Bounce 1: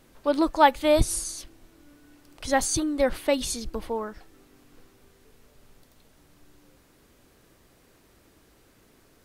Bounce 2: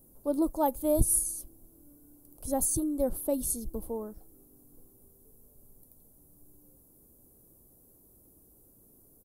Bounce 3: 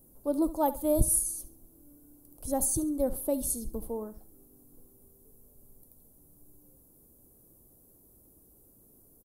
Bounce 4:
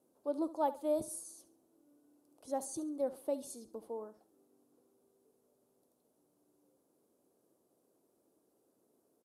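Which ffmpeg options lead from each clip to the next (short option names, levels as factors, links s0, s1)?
-af "firequalizer=gain_entry='entry(220,0);entry(640,-5);entry(1900,-28);entry(11000,12)':delay=0.05:min_phase=1,volume=0.75"
-af "aecho=1:1:69|138|207:0.158|0.0507|0.0162"
-af "highpass=360,lowpass=5200,volume=0.596"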